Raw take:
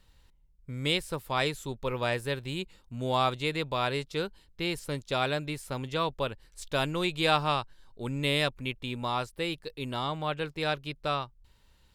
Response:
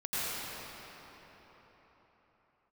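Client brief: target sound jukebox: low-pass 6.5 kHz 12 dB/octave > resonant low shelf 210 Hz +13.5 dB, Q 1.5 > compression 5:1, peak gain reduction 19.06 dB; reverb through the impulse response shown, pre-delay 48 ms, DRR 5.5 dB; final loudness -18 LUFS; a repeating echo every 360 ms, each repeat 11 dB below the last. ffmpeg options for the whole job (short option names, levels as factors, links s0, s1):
-filter_complex "[0:a]aecho=1:1:360|720|1080:0.282|0.0789|0.0221,asplit=2[s0][s1];[1:a]atrim=start_sample=2205,adelay=48[s2];[s1][s2]afir=irnorm=-1:irlink=0,volume=0.2[s3];[s0][s3]amix=inputs=2:normalize=0,lowpass=6500,lowshelf=f=210:t=q:w=1.5:g=13.5,acompressor=threshold=0.0158:ratio=5,volume=9.44"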